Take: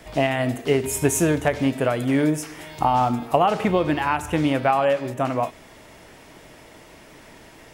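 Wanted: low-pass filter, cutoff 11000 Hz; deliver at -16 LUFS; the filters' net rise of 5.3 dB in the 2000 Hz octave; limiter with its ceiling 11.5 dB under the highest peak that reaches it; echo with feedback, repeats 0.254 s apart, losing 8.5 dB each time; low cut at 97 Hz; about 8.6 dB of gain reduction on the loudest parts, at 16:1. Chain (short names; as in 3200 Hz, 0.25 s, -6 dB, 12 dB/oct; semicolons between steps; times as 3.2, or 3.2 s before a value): HPF 97 Hz; LPF 11000 Hz; bell 2000 Hz +6.5 dB; compressor 16:1, threshold -21 dBFS; limiter -19 dBFS; feedback echo 0.254 s, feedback 38%, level -8.5 dB; gain +13.5 dB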